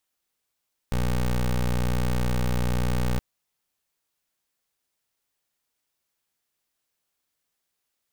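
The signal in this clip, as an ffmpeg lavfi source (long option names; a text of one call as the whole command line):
ffmpeg -f lavfi -i "aevalsrc='0.0668*(2*lt(mod(61.1*t,1),0.18)-1)':duration=2.27:sample_rate=44100" out.wav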